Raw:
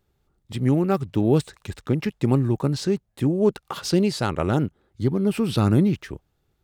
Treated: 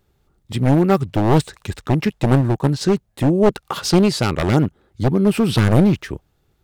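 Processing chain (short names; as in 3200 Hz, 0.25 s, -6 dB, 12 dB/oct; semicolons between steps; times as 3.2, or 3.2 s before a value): one-sided fold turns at -18 dBFS; 2.41–2.81 upward expander 1.5:1, over -33 dBFS; gain +6.5 dB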